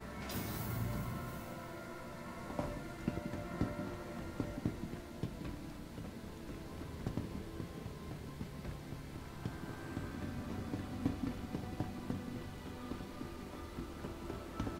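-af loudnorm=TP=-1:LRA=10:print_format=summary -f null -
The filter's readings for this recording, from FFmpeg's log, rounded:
Input Integrated:    -44.0 LUFS
Input True Peak:     -20.2 dBTP
Input LRA:             3.1 LU
Input Threshold:     -54.0 LUFS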